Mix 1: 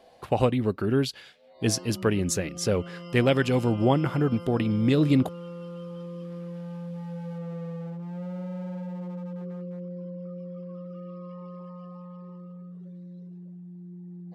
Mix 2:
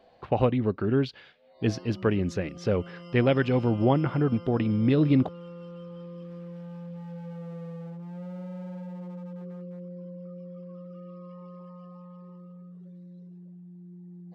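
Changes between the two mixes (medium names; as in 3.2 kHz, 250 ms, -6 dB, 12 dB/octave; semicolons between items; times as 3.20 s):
speech: add distance through air 250 m; background -3.5 dB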